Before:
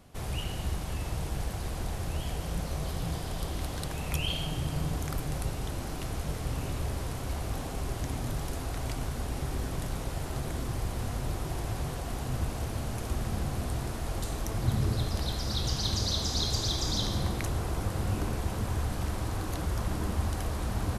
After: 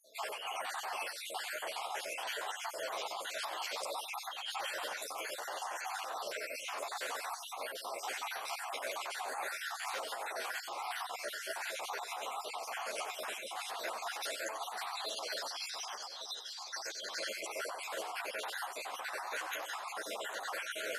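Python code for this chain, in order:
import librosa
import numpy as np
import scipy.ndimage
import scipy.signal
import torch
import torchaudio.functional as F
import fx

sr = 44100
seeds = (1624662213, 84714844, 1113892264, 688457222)

p1 = fx.spec_dropout(x, sr, seeds[0], share_pct=60)
p2 = scipy.signal.sosfilt(scipy.signal.butter(4, 650.0, 'highpass', fs=sr, output='sos'), p1)
p3 = fx.high_shelf(p2, sr, hz=4400.0, db=-10.5)
p4 = fx.over_compress(p3, sr, threshold_db=-50.0, ratio=-1.0)
p5 = p4 + fx.echo_single(p4, sr, ms=94, db=-11.0, dry=0)
p6 = fx.ensemble(p5, sr)
y = p6 * librosa.db_to_amplitude(12.5)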